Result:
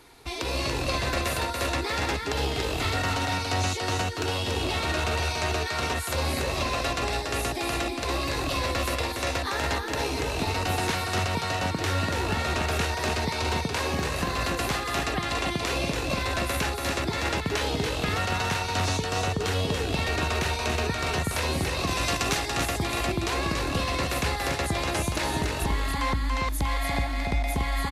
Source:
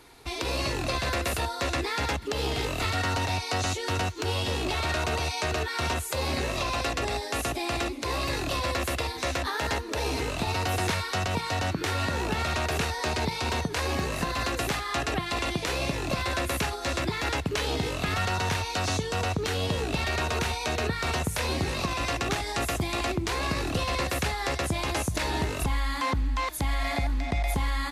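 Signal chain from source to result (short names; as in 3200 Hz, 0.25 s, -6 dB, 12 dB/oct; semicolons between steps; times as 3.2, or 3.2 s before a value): 21.87–22.37 high shelf 4200 Hz +8.5 dB; on a send: echo 0.285 s -4.5 dB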